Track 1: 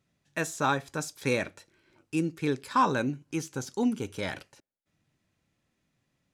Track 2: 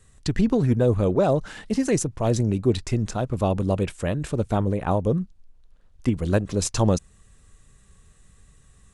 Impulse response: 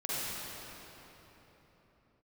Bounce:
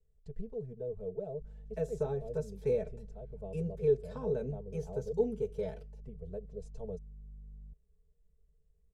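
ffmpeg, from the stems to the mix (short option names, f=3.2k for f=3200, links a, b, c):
-filter_complex "[0:a]aeval=exprs='val(0)+0.00355*(sin(2*PI*50*n/s)+sin(2*PI*2*50*n/s)/2+sin(2*PI*3*50*n/s)/3+sin(2*PI*4*50*n/s)/4+sin(2*PI*5*50*n/s)/5)':c=same,adelay=1400,volume=0.5dB[a];[1:a]volume=-18dB[b];[a][b]amix=inputs=2:normalize=0,aecho=1:1:4.6:0.88,acrossover=split=480[c][d];[d]acompressor=threshold=-29dB:ratio=5[e];[c][e]amix=inputs=2:normalize=0,firequalizer=gain_entry='entry(130,0);entry(300,-27);entry(430,2);entry(1100,-24)':delay=0.05:min_phase=1"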